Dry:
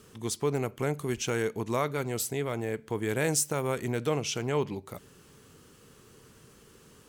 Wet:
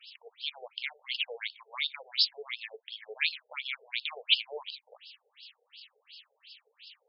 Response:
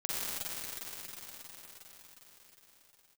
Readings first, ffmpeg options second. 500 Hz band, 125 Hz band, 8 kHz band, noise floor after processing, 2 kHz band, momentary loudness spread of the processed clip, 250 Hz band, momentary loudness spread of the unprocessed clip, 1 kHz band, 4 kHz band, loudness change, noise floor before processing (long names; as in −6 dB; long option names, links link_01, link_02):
−16.5 dB, below −40 dB, below −40 dB, −78 dBFS, +2.0 dB, 25 LU, below −40 dB, 7 LU, −13.0 dB, +11.0 dB, −2.0 dB, −57 dBFS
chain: -af "aexciter=amount=13.8:drive=7.2:freq=2300,afftfilt=real='re*between(b*sr/1024,570*pow(3800/570,0.5+0.5*sin(2*PI*2.8*pts/sr))/1.41,570*pow(3800/570,0.5+0.5*sin(2*PI*2.8*pts/sr))*1.41)':imag='im*between(b*sr/1024,570*pow(3800/570,0.5+0.5*sin(2*PI*2.8*pts/sr))/1.41,570*pow(3800/570,0.5+0.5*sin(2*PI*2.8*pts/sr))*1.41)':win_size=1024:overlap=0.75,volume=-7dB"